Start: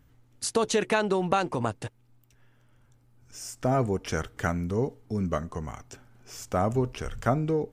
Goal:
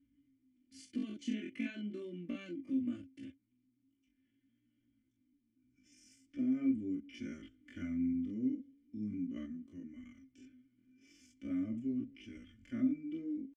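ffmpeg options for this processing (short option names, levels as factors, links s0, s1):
-filter_complex "[0:a]flanger=delay=17:depth=7.1:speed=0.74,asplit=3[s0][s1][s2];[s0]bandpass=f=270:t=q:w=8,volume=1[s3];[s1]bandpass=f=2290:t=q:w=8,volume=0.501[s4];[s2]bandpass=f=3010:t=q:w=8,volume=0.355[s5];[s3][s4][s5]amix=inputs=3:normalize=0,equalizer=f=4500:w=6.7:g=-3,bandreject=f=3800:w=5.6,atempo=0.57,bass=f=250:g=11,treble=f=4000:g=5,aecho=1:1:3.4:0.89,volume=0.631"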